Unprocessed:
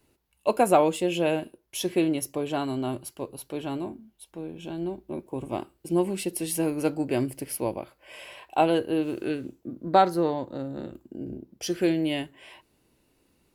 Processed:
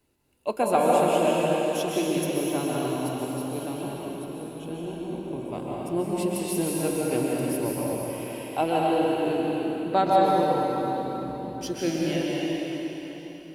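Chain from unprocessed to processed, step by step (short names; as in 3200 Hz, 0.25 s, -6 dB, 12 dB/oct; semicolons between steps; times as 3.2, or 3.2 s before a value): plate-style reverb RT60 4.2 s, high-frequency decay 0.9×, pre-delay 0.115 s, DRR -5 dB; gain -4.5 dB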